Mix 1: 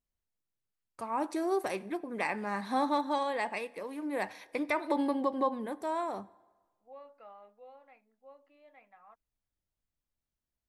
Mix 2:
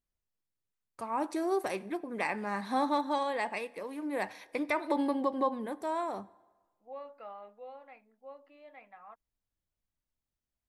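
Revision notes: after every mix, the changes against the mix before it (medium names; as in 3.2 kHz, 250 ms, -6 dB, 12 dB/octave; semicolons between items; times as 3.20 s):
second voice +6.0 dB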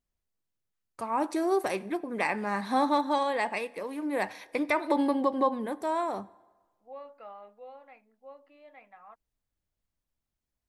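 first voice +4.0 dB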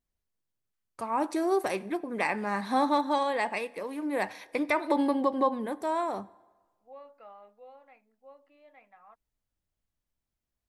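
second voice -4.0 dB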